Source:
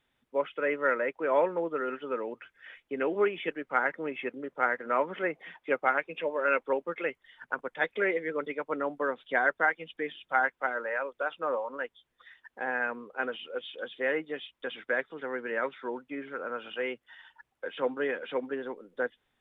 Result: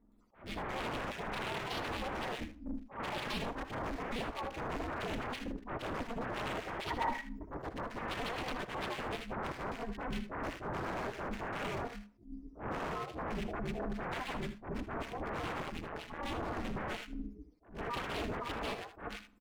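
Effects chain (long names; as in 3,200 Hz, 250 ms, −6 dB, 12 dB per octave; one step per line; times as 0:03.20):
frequency axis turned over on the octave scale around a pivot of 530 Hz
0:08.31–0:09.34: comb filter 6.6 ms, depth 62%
brickwall limiter −25 dBFS, peak gain reduction 12 dB
wave folding −39 dBFS
multiband delay without the direct sound lows, highs 120 ms, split 1,900 Hz
ring modulation 120 Hz
0:06.90–0:07.45: hollow resonant body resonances 930/1,900 Hz, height 17 dB
0:15.62–0:16.19: amplitude modulation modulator 160 Hz, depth 70%
ambience of single reflections 63 ms −15.5 dB, 78 ms −12 dB
on a send at −23 dB: convolution reverb RT60 0.65 s, pre-delay 69 ms
on the sum: level that may rise only so fast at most 160 dB per second
level +9 dB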